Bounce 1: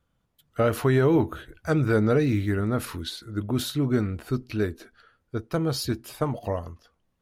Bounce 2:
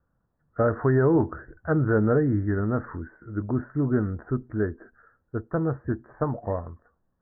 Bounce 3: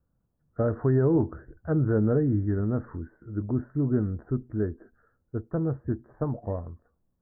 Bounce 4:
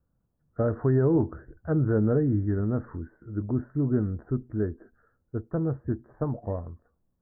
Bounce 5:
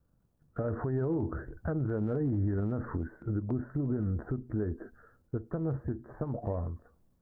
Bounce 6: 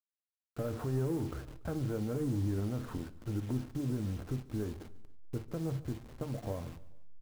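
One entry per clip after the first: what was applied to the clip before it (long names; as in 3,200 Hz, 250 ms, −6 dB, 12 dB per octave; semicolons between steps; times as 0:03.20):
Butterworth low-pass 1,800 Hz 96 dB per octave
parametric band 1,800 Hz −11 dB 2.8 octaves
no processing that can be heard
transient designer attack +11 dB, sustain +7 dB; downward compressor 5 to 1, threshold −24 dBFS, peak gain reduction 12.5 dB; brickwall limiter −23.5 dBFS, peak gain reduction 10.5 dB
hold until the input has moved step −42 dBFS; repeating echo 143 ms, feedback 48%, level −21 dB; convolution reverb, pre-delay 4 ms, DRR 10.5 dB; level −4 dB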